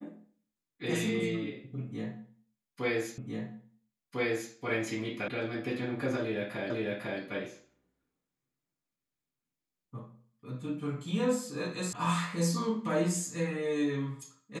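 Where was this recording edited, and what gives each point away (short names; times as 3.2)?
3.18 repeat of the last 1.35 s
5.28 sound cut off
6.7 repeat of the last 0.5 s
11.93 sound cut off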